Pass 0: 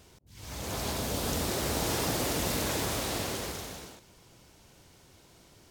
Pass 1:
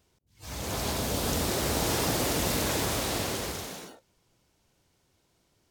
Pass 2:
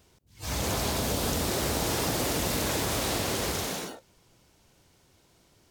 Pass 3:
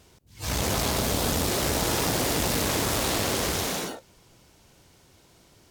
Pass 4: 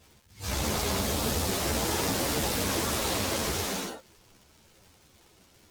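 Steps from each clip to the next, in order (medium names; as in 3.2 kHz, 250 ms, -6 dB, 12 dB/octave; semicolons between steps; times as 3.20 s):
spectral noise reduction 15 dB; trim +2.5 dB
compression, threshold -33 dBFS, peak gain reduction 9 dB; trim +7.5 dB
one-sided clip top -34.5 dBFS; trim +5.5 dB
crackle 150 per s -41 dBFS; three-phase chorus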